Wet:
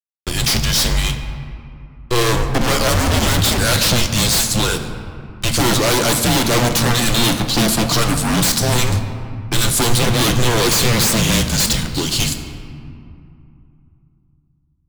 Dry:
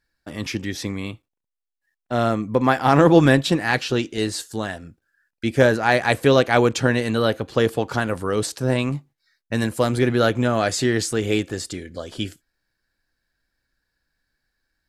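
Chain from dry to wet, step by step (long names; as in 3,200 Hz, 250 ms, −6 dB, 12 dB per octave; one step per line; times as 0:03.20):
high shelf with overshoot 3,000 Hz +11.5 dB, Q 1.5
harmonic generator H 8 −12 dB, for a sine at 3 dBFS
fuzz pedal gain 31 dB, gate −40 dBFS
frequency shifter −240 Hz
on a send: convolution reverb RT60 2.6 s, pre-delay 6 ms, DRR 6.5 dB
on the sum: level −1 dB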